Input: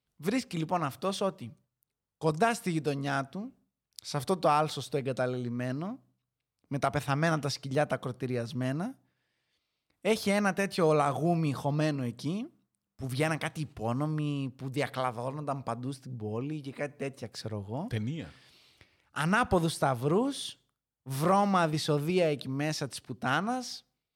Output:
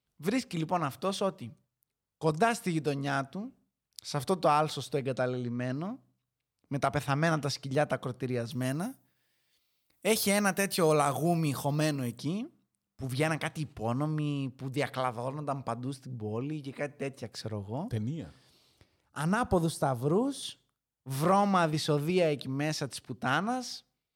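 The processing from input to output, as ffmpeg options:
-filter_complex "[0:a]asettb=1/sr,asplit=3[a][b][c];[a]atrim=end=5.164[d];[b]atrim=start=5.16:end=5.73,asetpts=PTS-STARTPTS,afade=t=in:d=0.004:c=qsin,afade=t=out:st=0.566:d=0.004:c=qsin,lowpass=8.1k[e];[c]atrim=start=5.726[f];[d][e]acrossfade=d=0.004:c1=hsin:c2=qsin[g];[g][f]acrossfade=d=0.004:c1=qsin:c2=hsin,asettb=1/sr,asplit=3[h][i][j];[h]atrim=end=8.514[k];[i]atrim=start=8.51:end=12.18,asetpts=PTS-STARTPTS,afade=t=in:d=0.004:c=qsin,afade=t=out:st=3.666:d=0.004:c=qsin,aemphasis=mode=production:type=50fm[l];[j]atrim=start=12.176[m];[k][l]acrossfade=d=0.004:c1=hsin:c2=qsin[n];[n][m]acrossfade=d=0.004:c1=qsin:c2=hsin,asettb=1/sr,asplit=3[o][p][q];[o]atrim=end=17.844[r];[p]atrim=start=17.84:end=20.43,asetpts=PTS-STARTPTS,afade=t=in:d=0.004:c=qsin,afade=t=out:st=2.586:d=0.004:c=qsin,equalizer=f=2.3k:t=o:w=1.5:g=-10[s];[q]atrim=start=20.426[t];[r][s]acrossfade=d=0.004:c1=hsin:c2=qsin[u];[u][t]acrossfade=d=0.004:c1=qsin:c2=hsin"

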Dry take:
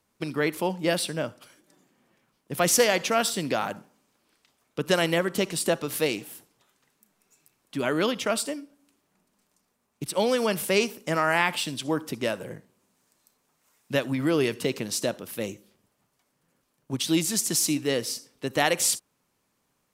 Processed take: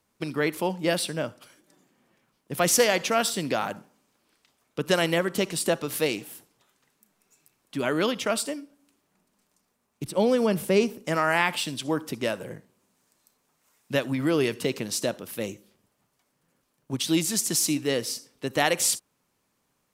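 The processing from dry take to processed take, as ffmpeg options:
-filter_complex "[0:a]asettb=1/sr,asplit=3[a][b][c];[a]atrim=end=10.044[d];[b]atrim=start=10.04:end=11.05,asetpts=PTS-STARTPTS,afade=t=in:d=0.004:c=qsin,afade=t=out:st=1.006:d=0.004:c=qsin,tiltshelf=f=670:g=6[e];[c]atrim=start=11.046[f];[d][e]acrossfade=d=0.004:c1=hsin:c2=qsin[g];[g][f]acrossfade=d=0.004:c1=qsin:c2=hsin"

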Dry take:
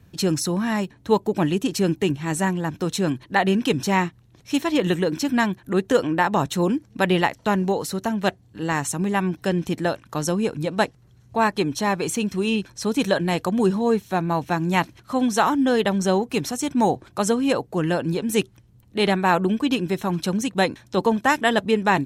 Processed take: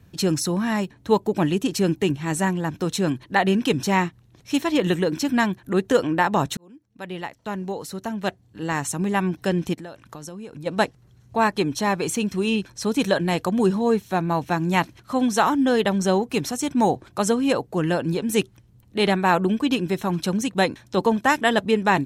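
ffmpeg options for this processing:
-filter_complex "[0:a]asplit=3[a][b][c];[a]afade=t=out:st=9.73:d=0.02[d];[b]acompressor=threshold=-35dB:ratio=5:attack=3.2:release=140:knee=1:detection=peak,afade=t=in:st=9.73:d=0.02,afade=t=out:st=10.65:d=0.02[e];[c]afade=t=in:st=10.65:d=0.02[f];[d][e][f]amix=inputs=3:normalize=0,asplit=2[g][h];[g]atrim=end=6.57,asetpts=PTS-STARTPTS,afade=t=out:st=6.566:d=0.004:c=hsin[i];[h]atrim=start=6.57,asetpts=PTS-STARTPTS,afade=t=in:d=2.61[j];[i][j]concat=n=2:v=0:a=1"

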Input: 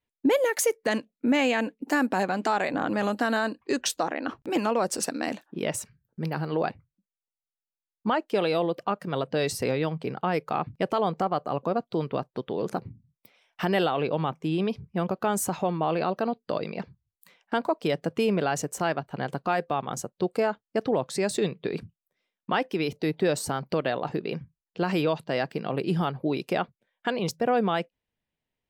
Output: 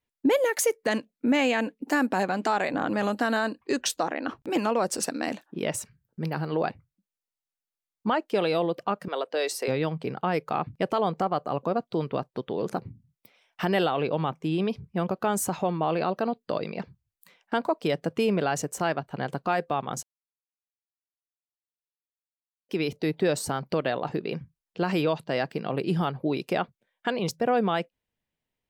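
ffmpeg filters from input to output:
-filter_complex "[0:a]asettb=1/sr,asplit=3[a][b][c];[a]atrim=end=9.084[d];[b]atrim=start=9.08:end=9.68,asetpts=PTS-STARTPTS,afade=t=in:d=0.004:c=qsin,afade=t=out:st=0.596:d=0.004:c=qsin,highpass=f=370:w=0.5412,highpass=f=370:w=1.3066[e];[c]atrim=start=9.676[f];[d][e]acrossfade=d=0.004:c1=hsin:c2=qsin[g];[g][f]acrossfade=d=0.004:c1=qsin:c2=hsin,asplit=3[h][i][j];[h]atrim=end=20.03,asetpts=PTS-STARTPTS,afade=t=out:st=20.026:d=0.004:c=hsin[k];[i]atrim=start=20.03:end=22.69,asetpts=PTS-STARTPTS,volume=0[l];[j]atrim=start=22.69,asetpts=PTS-STARTPTS,afade=t=in:d=0.004:c=hsin[m];[k][l][m]concat=n=3:v=0:a=1"

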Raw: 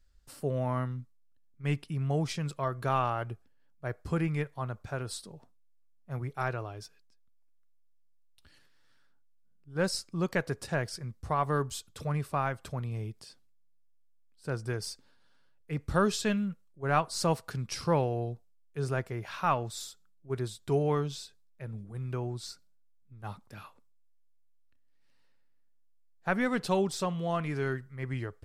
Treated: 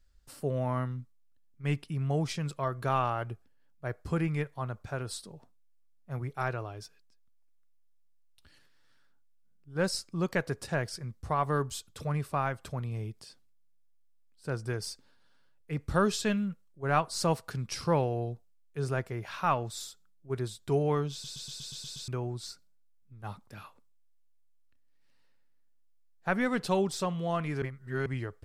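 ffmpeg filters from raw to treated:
-filter_complex "[0:a]asplit=11[a][b][c][d][e][f][g][h][i][j][k];[a]atrim=end=21.242[l];[b]atrim=start=21.118:end=21.242[m];[c]atrim=start=21.118:end=21.242[n];[d]atrim=start=21.118:end=21.242[o];[e]atrim=start=21.118:end=21.242[p];[f]atrim=start=21.118:end=21.242[q];[g]atrim=start=21.118:end=21.242[r];[h]atrim=start=21.118:end=21.242[s];[i]atrim=start=22.078:end=27.622[t];[j]atrim=start=27.618:end=28.062,asetpts=PTS-STARTPTS,areverse[u];[k]atrim=start=28.058[v];[l][m]acrossfade=d=0.004:c1=hsin:c2=hsin[w];[w][n]acrossfade=d=0.004:c1=hsin:c2=hsin[x];[x][o]acrossfade=d=0.004:c1=hsin:c2=hsin[y];[y][p]acrossfade=d=0.004:c1=hsin:c2=hsin[z];[z][q]acrossfade=d=0.004:c1=hsin:c2=hsin[aa];[aa][r]acrossfade=d=0.004:c1=hsin:c2=hsin[ab];[ab][s]acrossfade=d=0.004:c1=hsin:c2=hsin[ac];[ac][t]acrossfade=d=0.004:c1=hsin:c2=hsin[ad];[ad][u]acrossfade=d=0.004:c1=hsin:c2=hsin[ae];[ae][v]acrossfade=d=0.004:c1=hsin:c2=hsin"

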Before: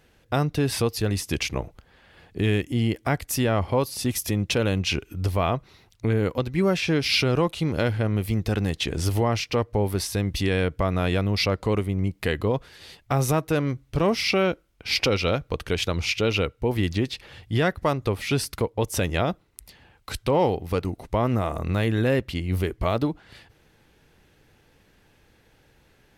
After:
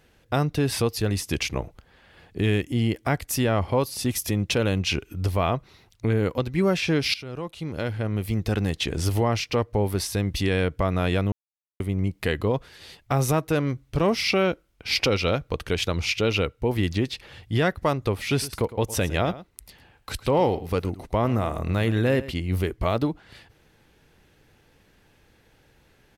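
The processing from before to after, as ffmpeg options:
-filter_complex "[0:a]asplit=3[a][b][c];[a]afade=t=out:st=18.26:d=0.02[d];[b]aecho=1:1:109:0.158,afade=t=in:st=18.26:d=0.02,afade=t=out:st=22.37:d=0.02[e];[c]afade=t=in:st=22.37:d=0.02[f];[d][e][f]amix=inputs=3:normalize=0,asplit=4[g][h][i][j];[g]atrim=end=7.14,asetpts=PTS-STARTPTS,afade=t=out:st=7.136:d=0.004:c=hsin:silence=0.105925[k];[h]atrim=start=7.14:end=11.32,asetpts=PTS-STARTPTS,afade=t=in:d=1.38:silence=0.105925,afade=t=out:st=4.176:d=0.004:c=hsin[l];[i]atrim=start=11.32:end=11.8,asetpts=PTS-STARTPTS,volume=0[m];[j]atrim=start=11.8,asetpts=PTS-STARTPTS,afade=t=in:d=0.004:c=hsin[n];[k][l][m][n]concat=n=4:v=0:a=1"

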